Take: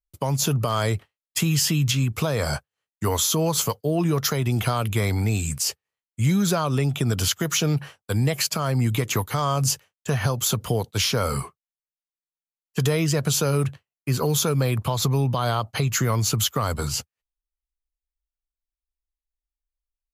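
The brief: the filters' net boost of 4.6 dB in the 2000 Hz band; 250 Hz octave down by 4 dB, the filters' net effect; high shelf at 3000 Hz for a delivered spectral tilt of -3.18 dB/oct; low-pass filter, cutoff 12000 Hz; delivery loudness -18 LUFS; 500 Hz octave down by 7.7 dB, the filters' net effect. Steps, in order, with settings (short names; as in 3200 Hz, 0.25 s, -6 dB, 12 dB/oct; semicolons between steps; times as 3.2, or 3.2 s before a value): LPF 12000 Hz; bell 250 Hz -5 dB; bell 500 Hz -8.5 dB; bell 2000 Hz +3.5 dB; high shelf 3000 Hz +7 dB; gain +3.5 dB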